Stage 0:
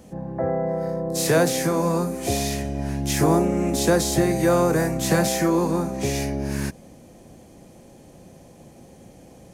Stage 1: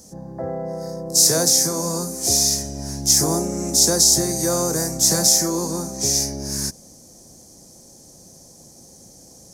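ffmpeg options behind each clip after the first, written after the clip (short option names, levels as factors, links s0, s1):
-af "highshelf=f=3900:t=q:w=3:g=12.5,volume=0.668"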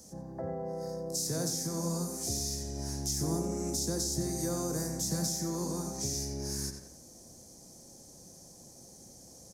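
-filter_complex "[0:a]asplit=2[s0][s1];[s1]adelay=89,lowpass=f=4000:p=1,volume=0.398,asplit=2[s2][s3];[s3]adelay=89,lowpass=f=4000:p=1,volume=0.39,asplit=2[s4][s5];[s5]adelay=89,lowpass=f=4000:p=1,volume=0.39,asplit=2[s6][s7];[s7]adelay=89,lowpass=f=4000:p=1,volume=0.39[s8];[s0][s2][s4][s6][s8]amix=inputs=5:normalize=0,acrossover=split=290[s9][s10];[s10]acompressor=threshold=0.0316:ratio=3[s11];[s9][s11]amix=inputs=2:normalize=0,volume=0.447"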